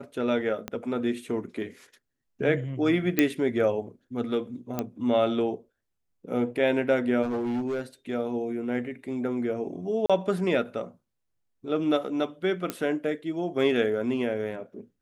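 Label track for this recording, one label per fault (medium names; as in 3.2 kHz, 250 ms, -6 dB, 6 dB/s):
0.680000	0.680000	pop -17 dBFS
3.190000	3.190000	pop -7 dBFS
4.790000	4.790000	pop -14 dBFS
7.220000	7.810000	clipped -25.5 dBFS
10.060000	10.100000	dropout 36 ms
12.700000	12.700000	pop -14 dBFS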